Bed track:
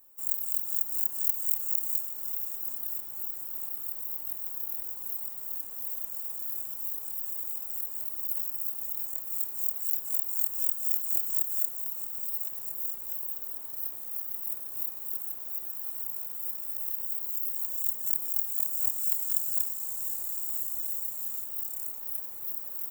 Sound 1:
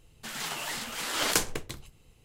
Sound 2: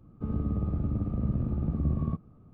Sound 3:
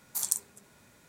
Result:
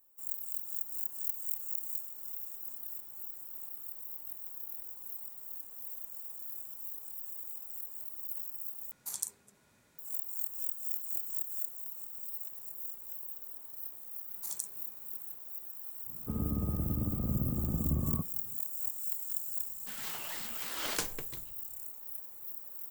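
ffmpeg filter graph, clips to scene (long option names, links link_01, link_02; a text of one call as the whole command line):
ffmpeg -i bed.wav -i cue0.wav -i cue1.wav -i cue2.wav -filter_complex "[3:a]asplit=2[link_01][link_02];[0:a]volume=-8dB[link_03];[2:a]lowshelf=frequency=150:gain=-3.5[link_04];[link_03]asplit=2[link_05][link_06];[link_05]atrim=end=8.914[link_07];[link_01]atrim=end=1.08,asetpts=PTS-STARTPTS,volume=-7.5dB[link_08];[link_06]atrim=start=9.986[link_09];[link_02]atrim=end=1.08,asetpts=PTS-STARTPTS,volume=-10dB,afade=type=in:duration=0.004:curve=hsin,afade=type=out:start_time=1.076:duration=0.004:curve=hsin,adelay=629748S[link_10];[link_04]atrim=end=2.53,asetpts=PTS-STARTPTS,volume=-2dB,afade=type=in:duration=0.004:curve=hsin,afade=type=out:start_time=2.526:duration=0.004:curve=hsin,adelay=16060[link_11];[1:a]atrim=end=2.24,asetpts=PTS-STARTPTS,volume=-9dB,afade=type=in:duration=0.004:curve=hsin,afade=type=out:start_time=2.236:duration=0.004:curve=hsin,adelay=19630[link_12];[link_07][link_08]acrossfade=duration=0.004:curve1=hsin:curve2=hsin[link_13];[link_13][link_09]acrossfade=duration=0.004:curve1=hsin:curve2=hsin[link_14];[link_14][link_10][link_11][link_12]amix=inputs=4:normalize=0" out.wav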